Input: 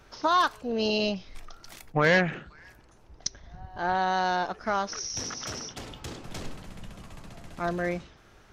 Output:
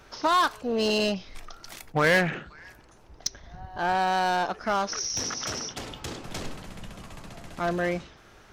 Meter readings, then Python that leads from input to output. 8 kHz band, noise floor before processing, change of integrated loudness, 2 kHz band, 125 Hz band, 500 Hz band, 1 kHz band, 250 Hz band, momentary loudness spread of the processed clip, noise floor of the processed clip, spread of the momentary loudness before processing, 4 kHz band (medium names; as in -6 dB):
+3.5 dB, -56 dBFS, +1.0 dB, +1.5 dB, 0.0 dB, +1.5 dB, +1.5 dB, +1.0 dB, 21 LU, -53 dBFS, 22 LU, +2.5 dB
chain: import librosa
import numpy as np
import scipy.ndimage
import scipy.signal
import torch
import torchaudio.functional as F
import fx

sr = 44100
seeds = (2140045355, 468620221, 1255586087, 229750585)

p1 = fx.low_shelf(x, sr, hz=210.0, db=-4.0)
p2 = 10.0 ** (-27.0 / 20.0) * (np.abs((p1 / 10.0 ** (-27.0 / 20.0) + 3.0) % 4.0 - 2.0) - 1.0)
p3 = p1 + F.gain(torch.from_numpy(p2), -7.0).numpy()
y = F.gain(torch.from_numpy(p3), 1.0).numpy()